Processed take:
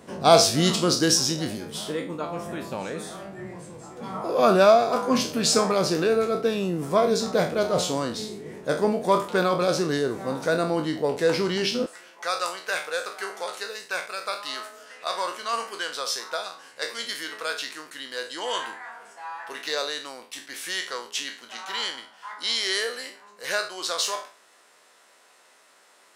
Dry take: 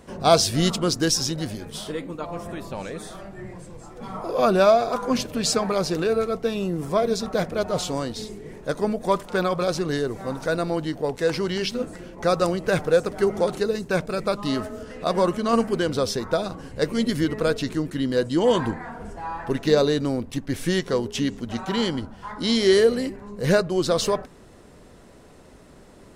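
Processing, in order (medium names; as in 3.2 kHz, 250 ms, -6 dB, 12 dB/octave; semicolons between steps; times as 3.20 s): spectral sustain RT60 0.38 s; high-pass 140 Hz 12 dB/octave, from 11.86 s 1.1 kHz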